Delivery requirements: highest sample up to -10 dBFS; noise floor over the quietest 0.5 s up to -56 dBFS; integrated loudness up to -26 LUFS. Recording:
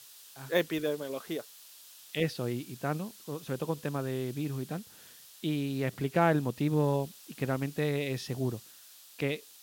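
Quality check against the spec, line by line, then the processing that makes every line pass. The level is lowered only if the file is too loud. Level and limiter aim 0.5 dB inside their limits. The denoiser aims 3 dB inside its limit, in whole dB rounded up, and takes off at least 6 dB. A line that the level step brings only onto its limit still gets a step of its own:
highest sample -13.0 dBFS: pass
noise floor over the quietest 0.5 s -54 dBFS: fail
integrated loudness -33.0 LUFS: pass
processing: noise reduction 6 dB, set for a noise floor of -54 dBFS

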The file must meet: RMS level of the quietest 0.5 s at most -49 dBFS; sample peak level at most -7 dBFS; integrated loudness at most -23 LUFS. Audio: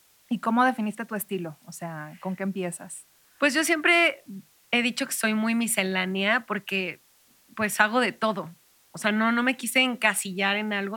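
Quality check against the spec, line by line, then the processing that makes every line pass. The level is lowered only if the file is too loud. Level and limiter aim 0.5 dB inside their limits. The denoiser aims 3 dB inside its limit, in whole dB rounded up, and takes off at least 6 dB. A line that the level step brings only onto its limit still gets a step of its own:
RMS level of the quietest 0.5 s -61 dBFS: pass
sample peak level -5.0 dBFS: fail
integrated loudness -24.5 LUFS: pass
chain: peak limiter -7.5 dBFS

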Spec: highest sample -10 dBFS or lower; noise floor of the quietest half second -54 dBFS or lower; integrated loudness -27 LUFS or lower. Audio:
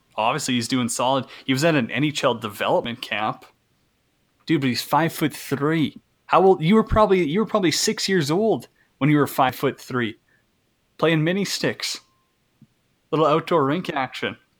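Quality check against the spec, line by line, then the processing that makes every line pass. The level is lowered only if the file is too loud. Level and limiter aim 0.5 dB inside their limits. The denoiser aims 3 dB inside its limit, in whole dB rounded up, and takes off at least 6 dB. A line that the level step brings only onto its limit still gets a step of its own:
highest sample -3.5 dBFS: fail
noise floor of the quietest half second -67 dBFS: pass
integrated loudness -21.5 LUFS: fail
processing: trim -6 dB; peak limiter -10.5 dBFS

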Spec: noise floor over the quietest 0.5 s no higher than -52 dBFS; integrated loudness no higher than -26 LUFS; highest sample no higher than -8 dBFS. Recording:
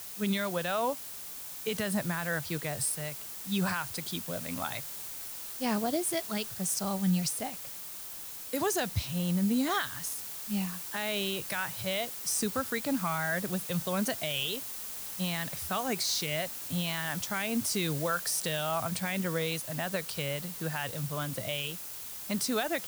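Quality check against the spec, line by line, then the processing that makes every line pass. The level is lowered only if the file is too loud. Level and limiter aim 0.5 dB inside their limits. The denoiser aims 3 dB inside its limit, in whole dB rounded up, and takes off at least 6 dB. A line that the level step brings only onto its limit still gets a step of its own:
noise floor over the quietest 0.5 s -42 dBFS: fail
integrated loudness -32.0 LUFS: pass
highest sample -18.0 dBFS: pass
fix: noise reduction 13 dB, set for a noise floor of -42 dBFS

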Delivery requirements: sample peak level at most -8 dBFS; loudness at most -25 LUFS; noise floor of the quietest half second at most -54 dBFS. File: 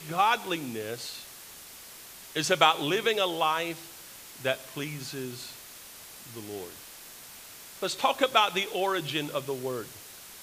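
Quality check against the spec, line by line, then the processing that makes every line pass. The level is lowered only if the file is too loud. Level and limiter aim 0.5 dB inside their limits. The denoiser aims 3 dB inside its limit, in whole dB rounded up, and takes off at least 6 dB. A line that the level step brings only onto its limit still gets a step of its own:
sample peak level -4.5 dBFS: fail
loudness -28.5 LUFS: pass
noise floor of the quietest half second -47 dBFS: fail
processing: noise reduction 10 dB, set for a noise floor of -47 dBFS; peak limiter -8.5 dBFS

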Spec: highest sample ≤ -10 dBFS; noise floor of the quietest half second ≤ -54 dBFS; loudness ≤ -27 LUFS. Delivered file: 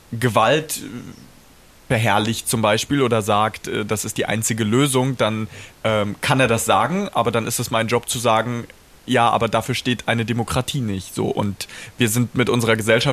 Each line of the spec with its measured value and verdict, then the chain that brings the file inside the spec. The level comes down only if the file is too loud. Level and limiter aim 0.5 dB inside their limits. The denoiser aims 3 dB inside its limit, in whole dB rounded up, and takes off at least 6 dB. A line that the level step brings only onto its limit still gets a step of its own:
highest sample -2.0 dBFS: fail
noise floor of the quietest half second -48 dBFS: fail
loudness -19.5 LUFS: fail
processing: trim -8 dB; peak limiter -10.5 dBFS

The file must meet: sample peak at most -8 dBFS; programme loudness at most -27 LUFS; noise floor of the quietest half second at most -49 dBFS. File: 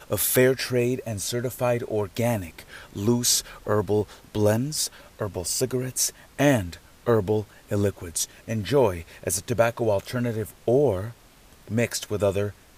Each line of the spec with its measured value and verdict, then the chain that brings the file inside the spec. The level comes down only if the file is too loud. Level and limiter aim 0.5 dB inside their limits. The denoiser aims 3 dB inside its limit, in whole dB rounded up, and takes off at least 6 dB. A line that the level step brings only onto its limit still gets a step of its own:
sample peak -7.5 dBFS: fail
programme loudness -25.0 LUFS: fail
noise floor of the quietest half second -52 dBFS: pass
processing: trim -2.5 dB

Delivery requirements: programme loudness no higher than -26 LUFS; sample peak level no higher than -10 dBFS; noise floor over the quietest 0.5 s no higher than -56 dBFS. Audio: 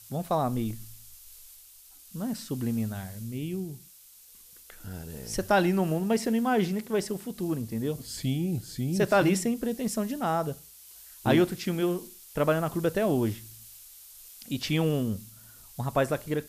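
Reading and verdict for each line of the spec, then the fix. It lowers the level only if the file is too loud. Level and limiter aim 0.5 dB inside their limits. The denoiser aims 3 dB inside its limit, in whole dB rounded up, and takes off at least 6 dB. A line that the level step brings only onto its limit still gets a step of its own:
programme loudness -28.5 LUFS: pass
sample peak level -12.0 dBFS: pass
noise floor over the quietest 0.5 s -53 dBFS: fail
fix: noise reduction 6 dB, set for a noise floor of -53 dBFS

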